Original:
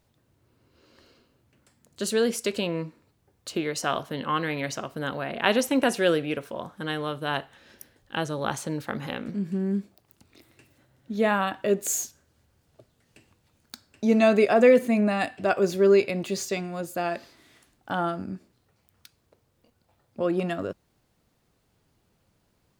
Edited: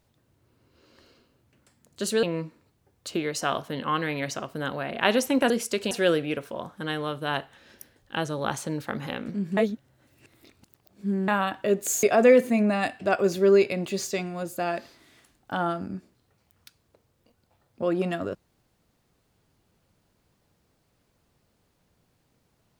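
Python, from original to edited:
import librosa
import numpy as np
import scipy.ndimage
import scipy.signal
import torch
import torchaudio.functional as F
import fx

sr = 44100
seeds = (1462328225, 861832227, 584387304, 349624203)

y = fx.edit(x, sr, fx.move(start_s=2.23, length_s=0.41, to_s=5.91),
    fx.reverse_span(start_s=9.57, length_s=1.71),
    fx.cut(start_s=12.03, length_s=2.38), tone=tone)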